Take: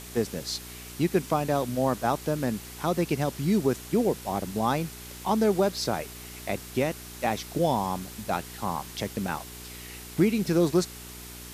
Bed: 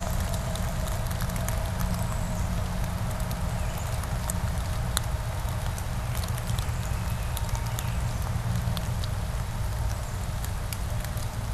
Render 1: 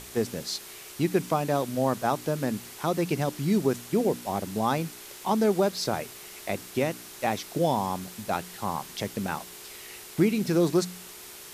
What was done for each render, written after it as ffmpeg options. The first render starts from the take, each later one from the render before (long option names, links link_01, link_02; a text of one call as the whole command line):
ffmpeg -i in.wav -af "bandreject=frequency=60:width_type=h:width=4,bandreject=frequency=120:width_type=h:width=4,bandreject=frequency=180:width_type=h:width=4,bandreject=frequency=240:width_type=h:width=4,bandreject=frequency=300:width_type=h:width=4" out.wav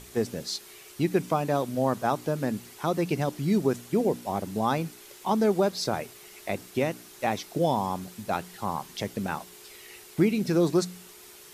ffmpeg -i in.wav -af "afftdn=noise_reduction=6:noise_floor=-45" out.wav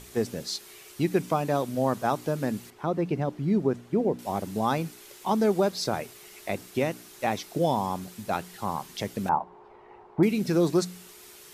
ffmpeg -i in.wav -filter_complex "[0:a]asettb=1/sr,asplit=3[link_01][link_02][link_03];[link_01]atrim=end=2.704[link_04];[link_02]atrim=start=2.7:end=4.19,asetpts=PTS-STARTPTS,afade=type=in:duration=0.004:curve=qsin,afade=type=out:start_time=1.486:duration=0.004:curve=qsin,lowpass=frequency=1200:poles=1[link_05];[link_03]atrim=start=4.186[link_06];[link_04][link_05]acrossfade=duration=0.004:curve1=hsin:curve2=qsin[link_07];[link_07][link_06]acrossfade=duration=0.004:curve1=qsin:curve2=hsin,asettb=1/sr,asplit=3[link_08][link_09][link_10];[link_08]atrim=end=9.294[link_11];[link_09]atrim=start=9.29:end=10.23,asetpts=PTS-STARTPTS,afade=type=in:duration=0.004:curve=qsin,afade=type=out:start_time=0.936:duration=0.004:curve=qsin,lowpass=frequency=900:width_type=q:width=4.3[link_12];[link_10]atrim=start=10.226[link_13];[link_11][link_12]acrossfade=duration=0.004:curve1=hsin:curve2=qsin[link_14];[link_14][link_13]acrossfade=duration=0.004:curve1=qsin:curve2=hsin" out.wav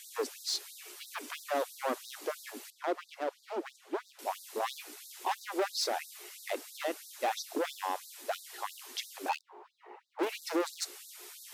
ffmpeg -i in.wav -af "volume=25.5dB,asoftclip=hard,volume=-25.5dB,afftfilt=real='re*gte(b*sr/1024,250*pow(3700/250,0.5+0.5*sin(2*PI*3*pts/sr)))':imag='im*gte(b*sr/1024,250*pow(3700/250,0.5+0.5*sin(2*PI*3*pts/sr)))':win_size=1024:overlap=0.75" out.wav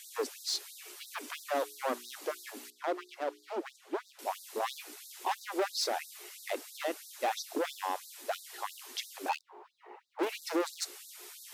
ffmpeg -i in.wav -filter_complex "[0:a]asplit=3[link_01][link_02][link_03];[link_01]afade=type=out:start_time=1.59:duration=0.02[link_04];[link_02]bandreject=frequency=60:width_type=h:width=6,bandreject=frequency=120:width_type=h:width=6,bandreject=frequency=180:width_type=h:width=6,bandreject=frequency=240:width_type=h:width=6,bandreject=frequency=300:width_type=h:width=6,bandreject=frequency=360:width_type=h:width=6,bandreject=frequency=420:width_type=h:width=6,afade=type=in:start_time=1.59:duration=0.02,afade=type=out:start_time=3.56:duration=0.02[link_05];[link_03]afade=type=in:start_time=3.56:duration=0.02[link_06];[link_04][link_05][link_06]amix=inputs=3:normalize=0" out.wav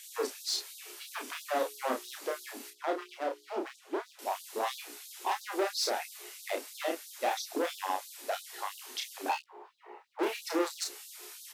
ffmpeg -i in.wav -af "aecho=1:1:31|49:0.631|0.178" out.wav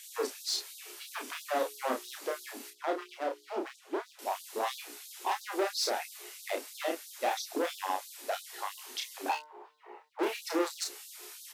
ffmpeg -i in.wav -filter_complex "[0:a]asplit=3[link_01][link_02][link_03];[link_01]afade=type=out:start_time=8.77:duration=0.02[link_04];[link_02]bandreject=frequency=151.3:width_type=h:width=4,bandreject=frequency=302.6:width_type=h:width=4,bandreject=frequency=453.9:width_type=h:width=4,bandreject=frequency=605.2:width_type=h:width=4,bandreject=frequency=756.5:width_type=h:width=4,bandreject=frequency=907.8:width_type=h:width=4,bandreject=frequency=1059.1:width_type=h:width=4,bandreject=frequency=1210.4:width_type=h:width=4,bandreject=frequency=1361.7:width_type=h:width=4,bandreject=frequency=1513:width_type=h:width=4,bandreject=frequency=1664.3:width_type=h:width=4,bandreject=frequency=1815.6:width_type=h:width=4,bandreject=frequency=1966.9:width_type=h:width=4,bandreject=frequency=2118.2:width_type=h:width=4,afade=type=in:start_time=8.77:duration=0.02,afade=type=out:start_time=10.08:duration=0.02[link_05];[link_03]afade=type=in:start_time=10.08:duration=0.02[link_06];[link_04][link_05][link_06]amix=inputs=3:normalize=0" out.wav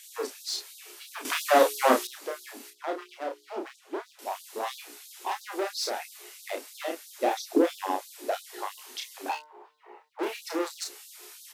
ffmpeg -i in.wav -filter_complex "[0:a]asettb=1/sr,asplit=3[link_01][link_02][link_03];[link_01]atrim=end=7.184[link_04];[link_02]atrim=start=7.18:end=8.83,asetpts=PTS-STARTPTS,afade=type=in:duration=0.004:curve=qsin,afade=type=out:start_time=1.646:duration=0.004:curve=qsin,equalizer=frequency=330:width=1:gain=14[link_05];[link_03]atrim=start=8.826[link_06];[link_04][link_05]acrossfade=duration=0.004:curve1=hsin:curve2=qsin[link_07];[link_07][link_06]acrossfade=duration=0.004:curve1=qsin:curve2=hsin,asplit=3[link_08][link_09][link_10];[link_08]atrim=end=1.252[link_11];[link_09]atrim=start=1.248:end=2.072,asetpts=PTS-STARTPTS,volume=11.5dB[link_12];[link_10]atrim=start=2.068[link_13];[link_11][link_12]acrossfade=duration=0.004:curve1=hsin:curve2=hsin[link_14];[link_14][link_13]acrossfade=duration=0.004:curve1=hsin:curve2=hsin" out.wav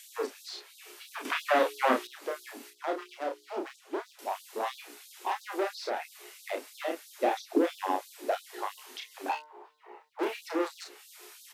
ffmpeg -i in.wav -filter_complex "[0:a]acrossover=split=220|1400|3300[link_01][link_02][link_03][link_04];[link_02]alimiter=limit=-17dB:level=0:latency=1:release=177[link_05];[link_04]acompressor=threshold=-51dB:ratio=5[link_06];[link_01][link_05][link_03][link_06]amix=inputs=4:normalize=0" out.wav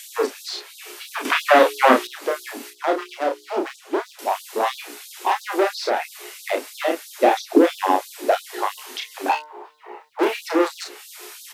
ffmpeg -i in.wav -af "volume=11.5dB" out.wav